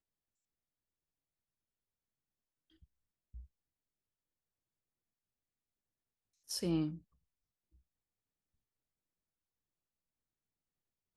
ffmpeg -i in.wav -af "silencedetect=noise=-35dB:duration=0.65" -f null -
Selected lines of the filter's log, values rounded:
silence_start: 0.00
silence_end: 6.51 | silence_duration: 6.51
silence_start: 6.89
silence_end: 11.16 | silence_duration: 4.27